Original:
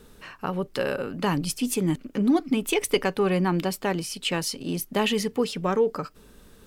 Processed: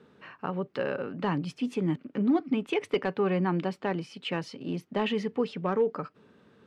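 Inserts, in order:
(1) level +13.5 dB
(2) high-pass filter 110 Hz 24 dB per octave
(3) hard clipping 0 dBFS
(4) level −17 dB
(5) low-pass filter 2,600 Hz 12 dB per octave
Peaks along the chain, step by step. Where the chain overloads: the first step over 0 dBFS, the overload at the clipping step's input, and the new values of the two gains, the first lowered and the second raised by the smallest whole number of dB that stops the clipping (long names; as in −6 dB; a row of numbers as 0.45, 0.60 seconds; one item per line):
+5.0, +6.0, 0.0, −17.0, −16.5 dBFS
step 1, 6.0 dB
step 1 +7.5 dB, step 4 −11 dB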